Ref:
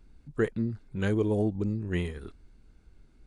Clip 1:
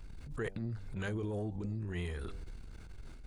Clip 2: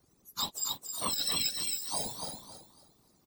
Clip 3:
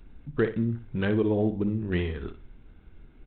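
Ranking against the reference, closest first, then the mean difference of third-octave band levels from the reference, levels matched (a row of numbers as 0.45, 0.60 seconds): 3, 1, 2; 3.5, 5.0, 19.0 decibels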